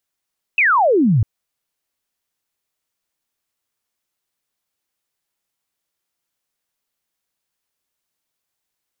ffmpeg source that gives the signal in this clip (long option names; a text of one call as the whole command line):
ffmpeg -f lavfi -i "aevalsrc='0.282*clip(t/0.002,0,1)*clip((0.65-t)/0.002,0,1)*sin(2*PI*2700*0.65/log(97/2700)*(exp(log(97/2700)*t/0.65)-1))':duration=0.65:sample_rate=44100" out.wav